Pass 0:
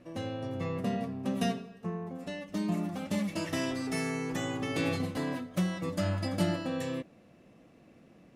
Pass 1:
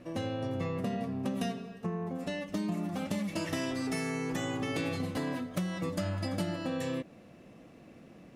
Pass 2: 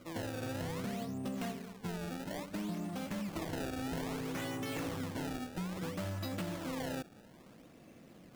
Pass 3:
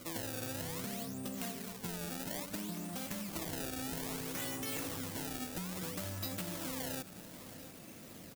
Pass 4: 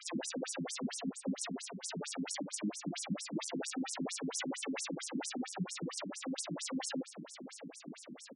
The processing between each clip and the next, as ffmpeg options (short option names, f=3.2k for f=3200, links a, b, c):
-af "acompressor=threshold=-35dB:ratio=5,volume=4.5dB"
-af "highshelf=f=5.3k:g=8.5,acrusher=samples=24:mix=1:aa=0.000001:lfo=1:lforange=38.4:lforate=0.6,asoftclip=type=tanh:threshold=-28dB,volume=-3.5dB"
-af "acompressor=threshold=-43dB:ratio=6,aecho=1:1:686|1372|2058|2744|3430|4116:0.168|0.099|0.0584|0.0345|0.0203|0.012,crystalizer=i=3:c=0,volume=2.5dB"
-af "afftfilt=real='re*between(b*sr/1024,210*pow(7600/210,0.5+0.5*sin(2*PI*4.4*pts/sr))/1.41,210*pow(7600/210,0.5+0.5*sin(2*PI*4.4*pts/sr))*1.41)':imag='im*between(b*sr/1024,210*pow(7600/210,0.5+0.5*sin(2*PI*4.4*pts/sr))/1.41,210*pow(7600/210,0.5+0.5*sin(2*PI*4.4*pts/sr))*1.41)':win_size=1024:overlap=0.75,volume=10.5dB"